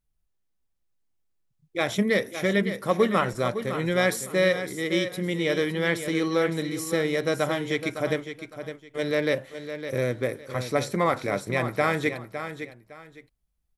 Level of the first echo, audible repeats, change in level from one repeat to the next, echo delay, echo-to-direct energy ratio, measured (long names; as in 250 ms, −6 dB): −10.0 dB, 2, −12.0 dB, 559 ms, −9.5 dB